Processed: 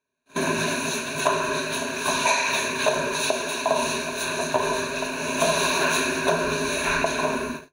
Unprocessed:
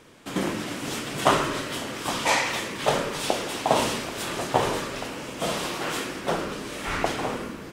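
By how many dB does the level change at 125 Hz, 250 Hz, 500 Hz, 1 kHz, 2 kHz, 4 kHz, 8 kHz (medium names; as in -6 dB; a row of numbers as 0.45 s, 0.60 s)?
-1.0 dB, +1.0 dB, +3.0 dB, +1.5 dB, +5.5 dB, +2.5 dB, +5.5 dB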